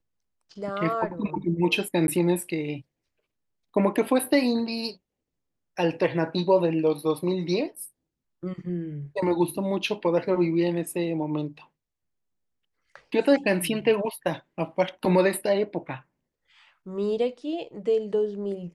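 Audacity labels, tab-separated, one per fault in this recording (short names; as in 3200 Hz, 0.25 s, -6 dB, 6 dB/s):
2.070000	2.080000	gap 11 ms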